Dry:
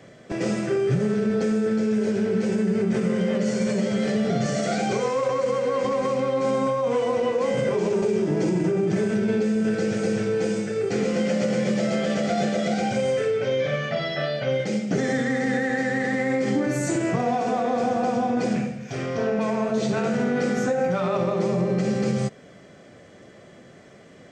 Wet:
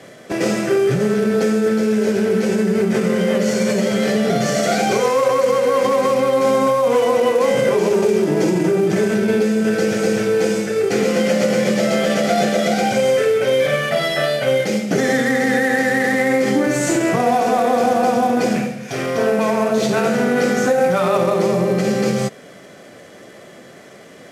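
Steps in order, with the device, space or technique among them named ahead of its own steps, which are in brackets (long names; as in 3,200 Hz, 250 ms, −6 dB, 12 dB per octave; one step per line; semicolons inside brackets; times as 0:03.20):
early wireless headset (high-pass filter 280 Hz 6 dB per octave; variable-slope delta modulation 64 kbit/s)
level +9 dB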